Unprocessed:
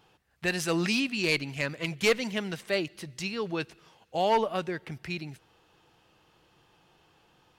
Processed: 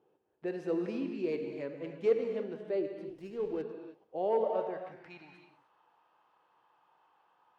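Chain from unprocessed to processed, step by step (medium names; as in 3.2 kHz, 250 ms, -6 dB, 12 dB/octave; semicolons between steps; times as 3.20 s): gated-style reverb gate 340 ms flat, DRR 4.5 dB; band-pass sweep 410 Hz -> 1 kHz, 4.24–5.33 s; 3.09–3.62 s: sliding maximum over 5 samples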